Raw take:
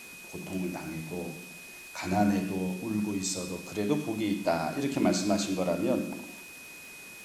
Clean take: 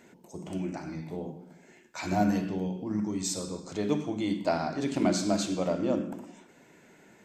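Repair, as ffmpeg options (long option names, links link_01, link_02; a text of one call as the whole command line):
ffmpeg -i in.wav -af "adeclick=threshold=4,bandreject=frequency=2500:width=30,afwtdn=0.0035" out.wav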